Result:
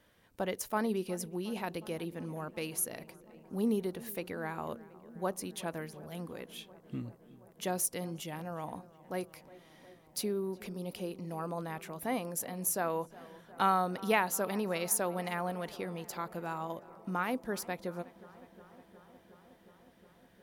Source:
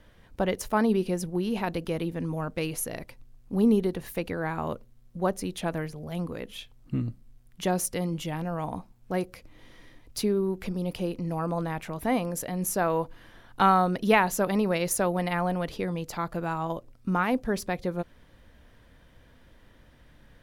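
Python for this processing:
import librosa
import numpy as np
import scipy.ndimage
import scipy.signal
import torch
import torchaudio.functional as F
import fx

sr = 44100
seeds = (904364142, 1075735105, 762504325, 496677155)

p1 = fx.highpass(x, sr, hz=200.0, slope=6)
p2 = fx.high_shelf(p1, sr, hz=8100.0, db=9.5)
p3 = p2 + fx.echo_filtered(p2, sr, ms=362, feedback_pct=83, hz=2600.0, wet_db=-20.0, dry=0)
y = p3 * 10.0 ** (-7.0 / 20.0)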